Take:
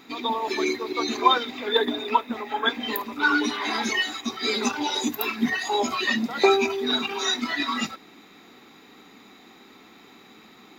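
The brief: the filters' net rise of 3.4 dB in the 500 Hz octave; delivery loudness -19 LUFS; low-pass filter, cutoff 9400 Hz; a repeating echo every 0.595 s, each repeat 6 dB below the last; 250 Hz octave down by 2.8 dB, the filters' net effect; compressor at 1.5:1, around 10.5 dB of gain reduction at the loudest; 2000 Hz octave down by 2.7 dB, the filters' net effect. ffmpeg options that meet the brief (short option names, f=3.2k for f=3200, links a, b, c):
-af "lowpass=9.4k,equalizer=f=250:t=o:g=-6.5,equalizer=f=500:t=o:g=7.5,equalizer=f=2k:t=o:g=-4,acompressor=threshold=-42dB:ratio=1.5,aecho=1:1:595|1190|1785|2380|2975|3570:0.501|0.251|0.125|0.0626|0.0313|0.0157,volume=12.5dB"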